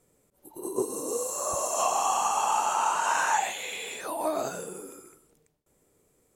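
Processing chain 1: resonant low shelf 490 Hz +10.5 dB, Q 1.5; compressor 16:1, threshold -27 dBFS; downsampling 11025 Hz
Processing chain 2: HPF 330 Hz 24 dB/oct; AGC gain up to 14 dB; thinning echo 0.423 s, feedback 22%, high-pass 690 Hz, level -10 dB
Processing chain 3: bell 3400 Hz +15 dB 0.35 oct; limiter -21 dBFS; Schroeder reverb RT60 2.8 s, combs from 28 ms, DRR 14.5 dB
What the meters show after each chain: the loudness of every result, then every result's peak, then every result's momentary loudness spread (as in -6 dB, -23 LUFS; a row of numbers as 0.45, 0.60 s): -33.0, -16.0, -30.0 LUFS; -18.0, -1.5, -19.5 dBFS; 5, 11, 11 LU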